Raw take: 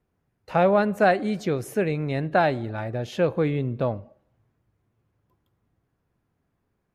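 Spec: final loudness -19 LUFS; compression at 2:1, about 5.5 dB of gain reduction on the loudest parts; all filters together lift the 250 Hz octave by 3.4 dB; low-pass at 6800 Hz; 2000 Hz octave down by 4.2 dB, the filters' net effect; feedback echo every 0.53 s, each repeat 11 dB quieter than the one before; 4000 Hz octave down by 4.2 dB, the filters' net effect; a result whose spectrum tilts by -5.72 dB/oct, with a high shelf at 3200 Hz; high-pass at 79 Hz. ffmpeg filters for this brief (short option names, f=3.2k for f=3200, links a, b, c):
-af "highpass=79,lowpass=6.8k,equalizer=f=250:t=o:g=5,equalizer=f=2k:t=o:g=-7,highshelf=f=3.2k:g=7.5,equalizer=f=4k:t=o:g=-7.5,acompressor=threshold=-24dB:ratio=2,aecho=1:1:530|1060|1590:0.282|0.0789|0.0221,volume=8dB"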